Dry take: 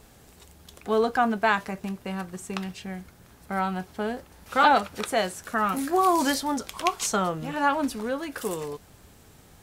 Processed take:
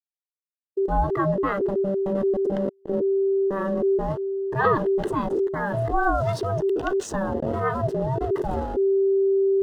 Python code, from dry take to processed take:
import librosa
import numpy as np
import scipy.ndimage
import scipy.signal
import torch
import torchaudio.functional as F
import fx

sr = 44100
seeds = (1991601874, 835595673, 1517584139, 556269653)

p1 = fx.delta_hold(x, sr, step_db=-29.0)
p2 = fx.low_shelf(p1, sr, hz=150.0, db=12.0)
p3 = p2 * np.sin(2.0 * np.pi * 390.0 * np.arange(len(p2)) / sr)
p4 = fx.notch(p3, sr, hz=2300.0, q=5.7)
p5 = fx.over_compress(p4, sr, threshold_db=-32.0, ratio=-0.5)
p6 = p4 + (p5 * librosa.db_to_amplitude(-1.0))
p7 = fx.high_shelf(p6, sr, hz=4200.0, db=-6.0)
y = fx.spectral_expand(p7, sr, expansion=1.5)